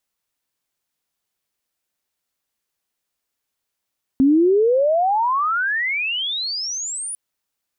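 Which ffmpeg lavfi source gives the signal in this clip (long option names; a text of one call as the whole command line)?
ffmpeg -f lavfi -i "aevalsrc='pow(10,(-10.5-15*t/2.95)/20)*sin(2*PI*260*2.95/log(10000/260)*(exp(log(10000/260)*t/2.95)-1))':duration=2.95:sample_rate=44100" out.wav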